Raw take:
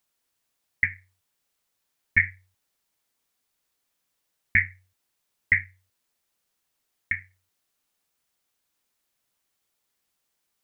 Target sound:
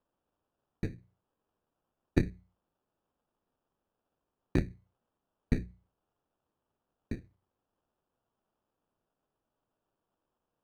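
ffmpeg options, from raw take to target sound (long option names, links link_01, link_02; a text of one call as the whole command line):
ffmpeg -i in.wav -af "acrusher=samples=21:mix=1:aa=0.000001,aeval=exprs='0.562*(cos(1*acos(clip(val(0)/0.562,-1,1)))-cos(1*PI/2))+0.0501*(cos(3*acos(clip(val(0)/0.562,-1,1)))-cos(3*PI/2))+0.0316*(cos(6*acos(clip(val(0)/0.562,-1,1)))-cos(6*PI/2))':channel_layout=same,aemphasis=mode=reproduction:type=75fm,bandreject=frequency=60:width_type=h:width=6,bandreject=frequency=120:width_type=h:width=6,bandreject=frequency=180:width_type=h:width=6,volume=-5dB" out.wav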